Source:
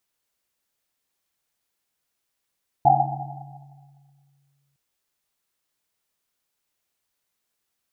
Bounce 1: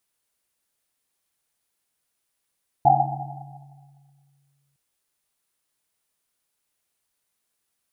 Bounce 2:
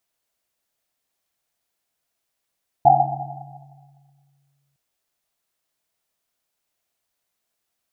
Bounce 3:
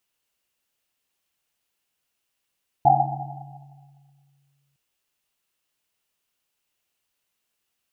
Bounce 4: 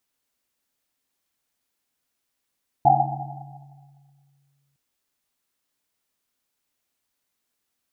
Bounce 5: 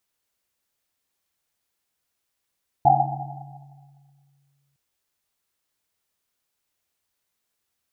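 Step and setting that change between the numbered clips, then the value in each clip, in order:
parametric band, centre frequency: 9,700, 670, 2,800, 260, 81 Hertz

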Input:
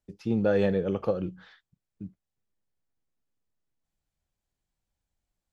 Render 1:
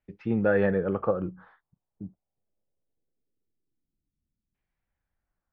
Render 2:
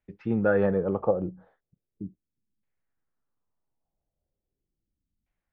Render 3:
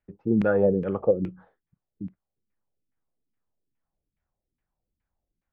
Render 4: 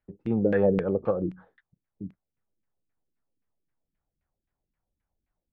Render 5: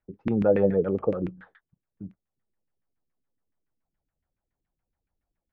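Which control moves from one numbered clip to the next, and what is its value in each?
auto-filter low-pass, speed: 0.22, 0.38, 2.4, 3.8, 7.1 Hertz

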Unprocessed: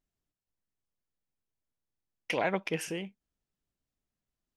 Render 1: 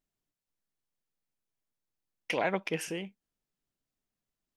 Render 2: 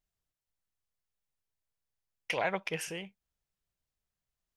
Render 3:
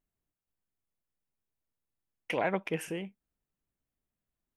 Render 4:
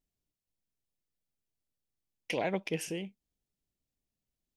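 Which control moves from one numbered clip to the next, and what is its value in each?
parametric band, centre frequency: 60, 270, 5,000, 1,300 Hertz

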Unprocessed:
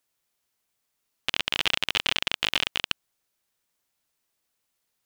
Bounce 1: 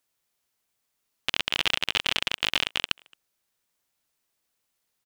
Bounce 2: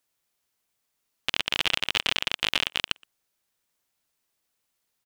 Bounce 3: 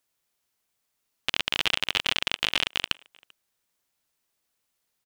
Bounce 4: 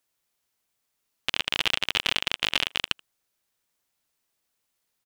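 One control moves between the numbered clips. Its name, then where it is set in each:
far-end echo of a speakerphone, delay time: 220, 120, 390, 80 milliseconds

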